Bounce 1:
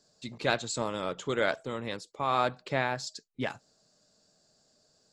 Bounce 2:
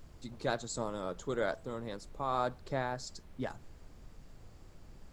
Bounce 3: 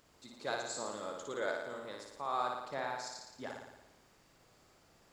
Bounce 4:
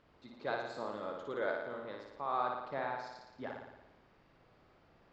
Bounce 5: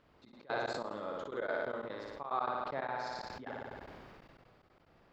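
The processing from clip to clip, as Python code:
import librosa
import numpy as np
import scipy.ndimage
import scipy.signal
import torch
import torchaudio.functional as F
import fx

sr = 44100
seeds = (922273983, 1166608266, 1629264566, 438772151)

y1 = fx.peak_eq(x, sr, hz=2600.0, db=-13.0, octaves=0.98)
y1 = fx.dmg_noise_colour(y1, sr, seeds[0], colour='brown', level_db=-47.0)
y1 = y1 * librosa.db_to_amplitude(-4.0)
y2 = fx.highpass(y1, sr, hz=630.0, slope=6)
y2 = fx.room_flutter(y2, sr, wall_m=9.8, rt60_s=0.96)
y2 = y2 * librosa.db_to_amplitude(-2.0)
y3 = fx.air_absorb(y2, sr, metres=300.0)
y3 = y3 * librosa.db_to_amplitude(2.0)
y4 = fx.step_gate(y3, sr, bpm=182, pattern='xxx.x.xx.x.x', floor_db=-24.0, edge_ms=4.5)
y4 = fx.sustainer(y4, sr, db_per_s=21.0)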